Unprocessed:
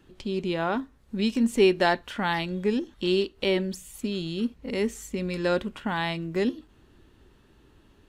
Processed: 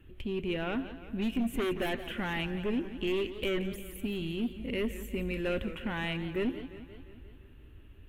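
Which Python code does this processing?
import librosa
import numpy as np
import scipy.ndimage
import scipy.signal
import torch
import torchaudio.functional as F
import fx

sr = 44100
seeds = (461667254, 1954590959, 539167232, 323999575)

p1 = fx.fold_sine(x, sr, drive_db=12, ceiling_db=-9.5)
p2 = x + F.gain(torch.from_numpy(p1), -8.0).numpy()
p3 = fx.curve_eq(p2, sr, hz=(100.0, 180.0, 260.0, 550.0, 890.0, 2800.0, 4800.0, 7900.0, 13000.0), db=(0, -12, -9, -12, -17, -5, -28, -20, -6))
p4 = p3 + 10.0 ** (-21.0 / 20.0) * np.pad(p3, (int(172 * sr / 1000.0), 0))[:len(p3)]
p5 = fx.echo_warbled(p4, sr, ms=175, feedback_pct=62, rate_hz=2.8, cents=140, wet_db=-13.5)
y = F.gain(torch.from_numpy(p5), -3.5).numpy()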